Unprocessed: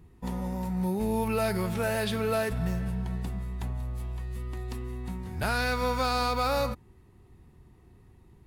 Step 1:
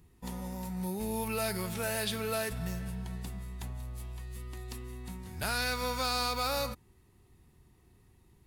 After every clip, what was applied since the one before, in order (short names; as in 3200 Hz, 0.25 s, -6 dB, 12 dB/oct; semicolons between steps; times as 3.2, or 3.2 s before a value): high shelf 2700 Hz +11.5 dB; gain -7 dB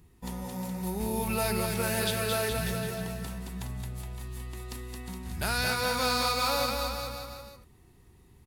bouncing-ball echo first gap 0.22 s, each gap 0.9×, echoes 5; gain +2.5 dB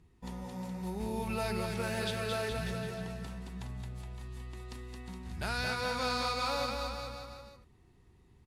air absorption 59 m; gain -4.5 dB